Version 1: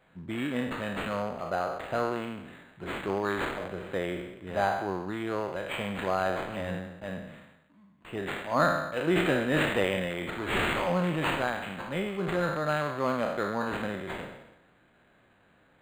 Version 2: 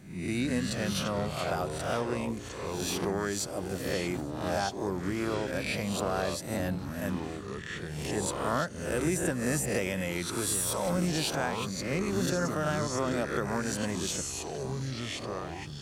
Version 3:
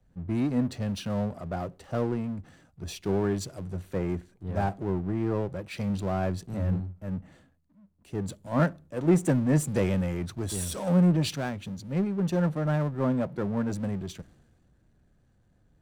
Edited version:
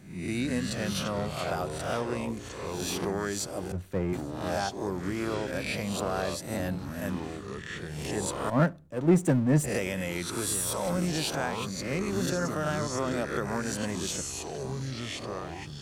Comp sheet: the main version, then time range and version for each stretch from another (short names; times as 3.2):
2
3.72–4.13 from 3
8.5–9.64 from 3
not used: 1